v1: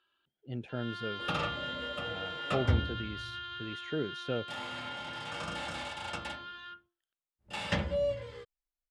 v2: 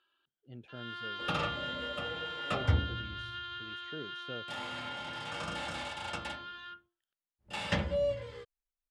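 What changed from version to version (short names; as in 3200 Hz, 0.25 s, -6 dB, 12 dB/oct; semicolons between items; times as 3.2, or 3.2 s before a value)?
speech -10.0 dB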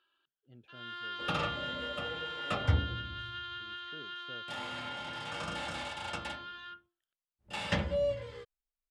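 speech -8.0 dB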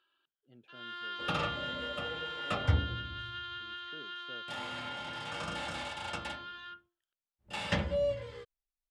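speech: add HPF 170 Hz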